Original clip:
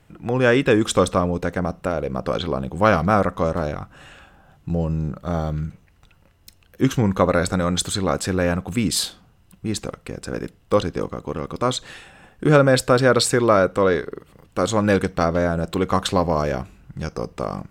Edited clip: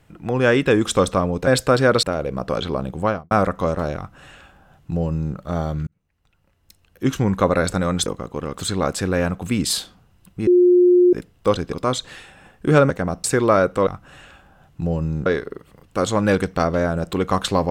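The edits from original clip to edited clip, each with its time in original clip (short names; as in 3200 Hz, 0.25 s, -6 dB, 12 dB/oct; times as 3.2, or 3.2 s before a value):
1.47–1.81 swap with 12.68–13.24
2.71–3.09 studio fade out
3.75–5.14 copy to 13.87
5.65–7.11 fade in
9.73–10.39 bleep 357 Hz -9.5 dBFS
10.99–11.51 move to 7.84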